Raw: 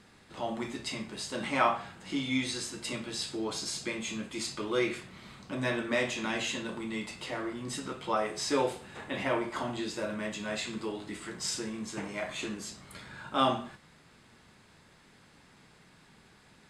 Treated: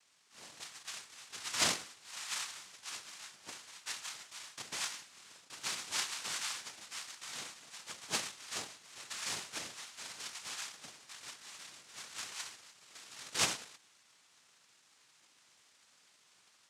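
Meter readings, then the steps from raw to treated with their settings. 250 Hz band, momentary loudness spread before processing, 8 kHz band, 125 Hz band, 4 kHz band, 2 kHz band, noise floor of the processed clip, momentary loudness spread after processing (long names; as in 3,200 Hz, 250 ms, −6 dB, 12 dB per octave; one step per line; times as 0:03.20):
−21.5 dB, 10 LU, +1.5 dB, −16.0 dB, −2.0 dB, −6.5 dB, −68 dBFS, 17 LU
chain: elliptic band-pass filter 1,100–3,300 Hz
automatic gain control gain up to 4 dB
cochlear-implant simulation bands 2
level −6 dB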